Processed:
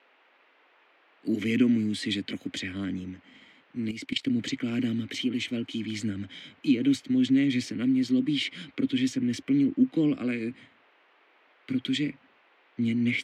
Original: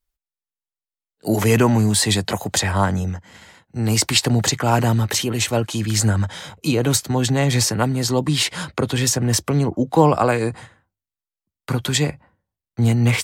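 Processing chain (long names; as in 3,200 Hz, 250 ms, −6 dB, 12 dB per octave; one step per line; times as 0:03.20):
formant filter i
noise in a band 300–2,700 Hz −66 dBFS
0:03.91–0:04.37: output level in coarse steps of 14 dB
level +3.5 dB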